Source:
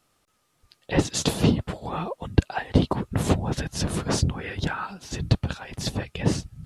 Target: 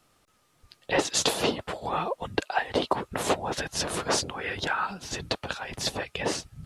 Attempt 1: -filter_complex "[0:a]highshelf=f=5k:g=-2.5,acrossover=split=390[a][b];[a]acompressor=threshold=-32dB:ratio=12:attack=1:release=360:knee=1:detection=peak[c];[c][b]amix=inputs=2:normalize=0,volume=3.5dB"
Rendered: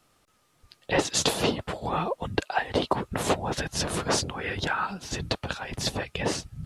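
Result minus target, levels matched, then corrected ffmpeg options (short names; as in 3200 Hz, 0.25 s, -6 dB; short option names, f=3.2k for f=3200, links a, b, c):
compressor: peak gain reduction -6.5 dB
-filter_complex "[0:a]highshelf=f=5k:g=-2.5,acrossover=split=390[a][b];[a]acompressor=threshold=-39dB:ratio=12:attack=1:release=360:knee=1:detection=peak[c];[c][b]amix=inputs=2:normalize=0,volume=3.5dB"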